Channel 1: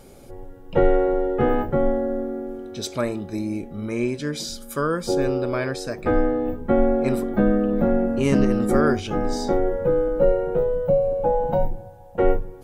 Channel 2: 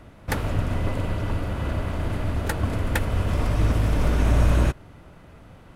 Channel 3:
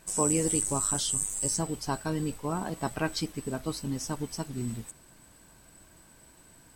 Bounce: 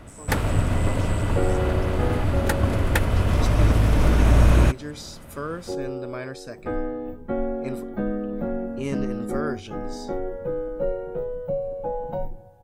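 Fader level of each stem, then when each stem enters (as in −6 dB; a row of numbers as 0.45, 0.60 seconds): −8.0, +3.0, −16.5 decibels; 0.60, 0.00, 0.00 seconds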